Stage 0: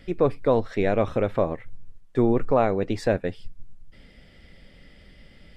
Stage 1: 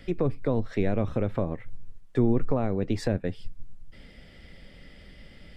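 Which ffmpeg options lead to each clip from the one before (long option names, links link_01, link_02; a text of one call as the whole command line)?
ffmpeg -i in.wav -filter_complex "[0:a]acrossover=split=280[link_01][link_02];[link_02]acompressor=threshold=-32dB:ratio=4[link_03];[link_01][link_03]amix=inputs=2:normalize=0,volume=1.5dB" out.wav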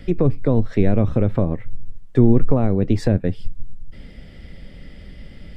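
ffmpeg -i in.wav -af "lowshelf=frequency=390:gain=8.5,volume=3dB" out.wav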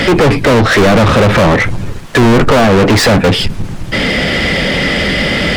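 ffmpeg -i in.wav -filter_complex "[0:a]asplit=2[link_01][link_02];[link_02]highpass=frequency=720:poles=1,volume=48dB,asoftclip=type=tanh:threshold=-1dB[link_03];[link_01][link_03]amix=inputs=2:normalize=0,lowpass=frequency=4200:poles=1,volume=-6dB" out.wav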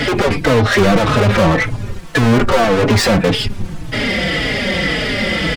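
ffmpeg -i in.wav -filter_complex "[0:a]asplit=2[link_01][link_02];[link_02]adelay=4.2,afreqshift=-1.8[link_03];[link_01][link_03]amix=inputs=2:normalize=1,volume=-1.5dB" out.wav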